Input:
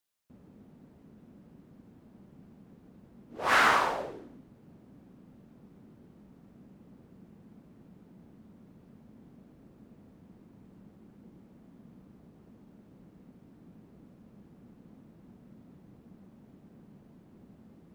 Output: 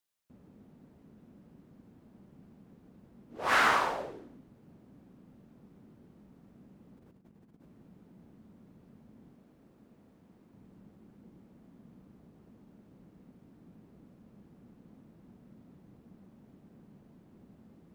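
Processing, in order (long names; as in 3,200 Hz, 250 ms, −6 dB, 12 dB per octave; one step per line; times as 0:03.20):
0:06.97–0:07.68: compressor whose output falls as the input rises −57 dBFS, ratio −0.5
0:09.33–0:10.54: low-shelf EQ 230 Hz −6.5 dB
level −2 dB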